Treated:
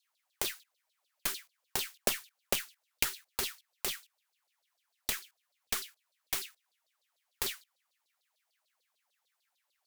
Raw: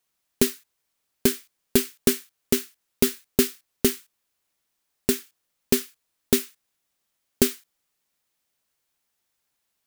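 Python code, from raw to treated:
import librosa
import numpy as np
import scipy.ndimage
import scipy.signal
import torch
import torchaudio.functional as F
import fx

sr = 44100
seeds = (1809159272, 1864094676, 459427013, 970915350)

y = fx.filter_lfo_highpass(x, sr, shape='saw_down', hz=6.7, low_hz=500.0, high_hz=4600.0, q=6.8)
y = fx.cheby_harmonics(y, sr, harmonics=(3, 5, 6, 7), levels_db=(-6, -10, -31, -13), full_scale_db=-3.5)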